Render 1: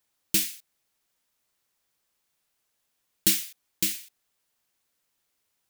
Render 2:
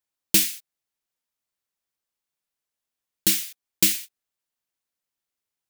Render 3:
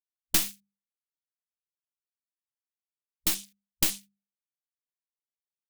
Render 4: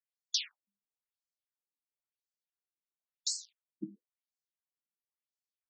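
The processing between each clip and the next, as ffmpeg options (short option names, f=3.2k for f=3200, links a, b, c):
-af "agate=range=-18dB:threshold=-41dB:ratio=16:detection=peak,alimiter=limit=-9.5dB:level=0:latency=1:release=469,volume=7.5dB"
-af "afwtdn=0.0158,bandreject=f=50:t=h:w=6,bandreject=f=100:t=h:w=6,bandreject=f=150:t=h:w=6,bandreject=f=200:t=h:w=6,aeval=exprs='0.841*(cos(1*acos(clip(val(0)/0.841,-1,1)))-cos(1*PI/2))+0.335*(cos(4*acos(clip(val(0)/0.841,-1,1)))-cos(4*PI/2))':c=same,volume=-8dB"
-af "afftfilt=real='re*between(b*sr/1024,240*pow(6000/240,0.5+0.5*sin(2*PI*0.97*pts/sr))/1.41,240*pow(6000/240,0.5+0.5*sin(2*PI*0.97*pts/sr))*1.41)':imag='im*between(b*sr/1024,240*pow(6000/240,0.5+0.5*sin(2*PI*0.97*pts/sr))/1.41,240*pow(6000/240,0.5+0.5*sin(2*PI*0.97*pts/sr))*1.41)':win_size=1024:overlap=0.75"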